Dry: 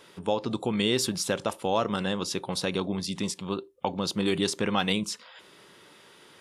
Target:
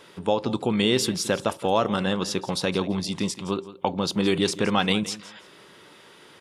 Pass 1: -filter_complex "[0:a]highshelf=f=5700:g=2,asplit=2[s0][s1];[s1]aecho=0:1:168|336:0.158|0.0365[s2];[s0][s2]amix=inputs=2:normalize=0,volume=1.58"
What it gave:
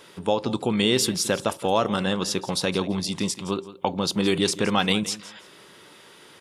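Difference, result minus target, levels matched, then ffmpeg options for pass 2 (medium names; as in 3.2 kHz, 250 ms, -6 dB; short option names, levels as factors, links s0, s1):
8 kHz band +3.0 dB
-filter_complex "[0:a]highshelf=f=5700:g=-4,asplit=2[s0][s1];[s1]aecho=0:1:168|336:0.158|0.0365[s2];[s0][s2]amix=inputs=2:normalize=0,volume=1.58"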